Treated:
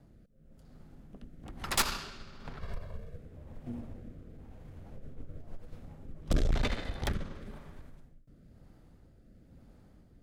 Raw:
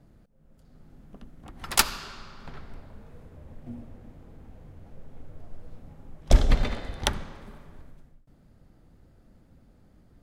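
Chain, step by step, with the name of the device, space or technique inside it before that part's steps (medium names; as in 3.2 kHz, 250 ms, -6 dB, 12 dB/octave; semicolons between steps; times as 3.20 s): 2.60–3.16 s: comb 1.8 ms, depth 76%; overdriven rotary cabinet (valve stage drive 26 dB, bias 0.65; rotary cabinet horn 1 Hz); trim +4.5 dB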